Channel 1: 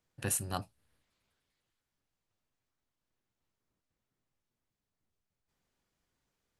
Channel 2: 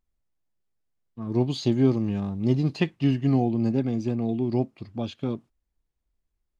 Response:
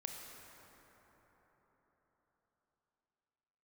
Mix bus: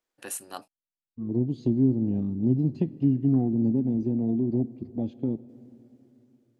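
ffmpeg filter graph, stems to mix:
-filter_complex "[0:a]highpass=440,volume=-2.5dB,asplit=3[a][b][c];[a]atrim=end=0.68,asetpts=PTS-STARTPTS,afade=t=out:st=0.676:d=0.004:c=hsin[d];[b]atrim=start=0.68:end=1.67,asetpts=PTS-STARTPTS,volume=0[e];[c]atrim=start=1.67,asetpts=PTS-STARTPTS,afade=t=in:d=0.004:c=hsin[f];[d][e][f]concat=n=3:v=0:a=1[g];[1:a]afwtdn=0.0355,acrossover=split=240[h][i];[i]acompressor=threshold=-32dB:ratio=6[j];[h][j]amix=inputs=2:normalize=0,volume=-9.5dB,asplit=2[k][l];[l]volume=-11.5dB[m];[2:a]atrim=start_sample=2205[n];[m][n]afir=irnorm=-1:irlink=0[o];[g][k][o]amix=inputs=3:normalize=0,equalizer=f=280:w=1.3:g=7.5,dynaudnorm=f=420:g=5:m=5.5dB"

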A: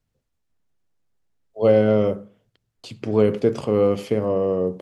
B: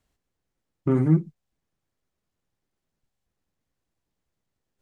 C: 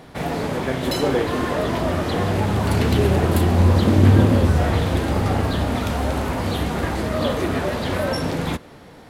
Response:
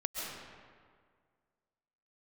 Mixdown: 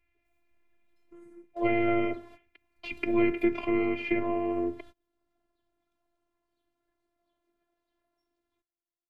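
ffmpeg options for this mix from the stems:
-filter_complex "[0:a]lowpass=f=2.3k:t=q:w=11,volume=2.5dB,asplit=2[a][b];[1:a]aemphasis=mode=production:type=75fm,flanger=delay=17:depth=4.5:speed=2.2,adelay=250,volume=-14dB[c];[2:a]adelay=50,volume=-19.5dB[d];[b]apad=whole_len=403301[e];[d][e]sidechaingate=range=-34dB:threshold=-43dB:ratio=16:detection=peak[f];[c][f]amix=inputs=2:normalize=0,acompressor=threshold=-57dB:ratio=1.5,volume=0dB[g];[a][g]amix=inputs=2:normalize=0,acrossover=split=240[h][i];[i]acompressor=threshold=-32dB:ratio=1.5[j];[h][j]amix=inputs=2:normalize=0,afftfilt=real='hypot(re,im)*cos(PI*b)':imag='0':win_size=512:overlap=0.75"

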